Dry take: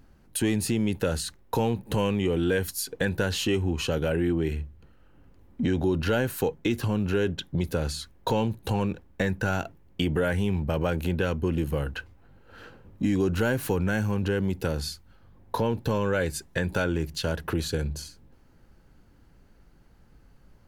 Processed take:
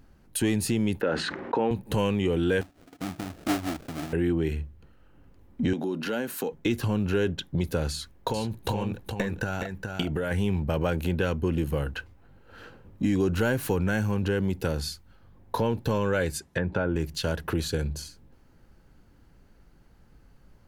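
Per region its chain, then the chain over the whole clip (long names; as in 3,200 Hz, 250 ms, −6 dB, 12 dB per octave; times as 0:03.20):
0:01.01–0:01.71: Chebyshev band-pass filter 270–1,900 Hz + envelope flattener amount 70%
0:02.61–0:04.13: formant filter u + bass and treble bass +14 dB, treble +8 dB + sample-rate reduction 1,000 Hz, jitter 20%
0:05.73–0:06.53: parametric band 240 Hz +5 dB 0.23 octaves + downward compressor 3 to 1, threshold −25 dBFS + high-pass filter 180 Hz 24 dB per octave
0:07.92–0:10.31: transient designer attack +8 dB, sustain +1 dB + downward compressor 3 to 1, threshold −26 dBFS + single-tap delay 419 ms −5 dB
0:16.38–0:16.96: high-pass filter 61 Hz + treble cut that deepens with the level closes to 1,400 Hz, closed at −23 dBFS
whole clip: no processing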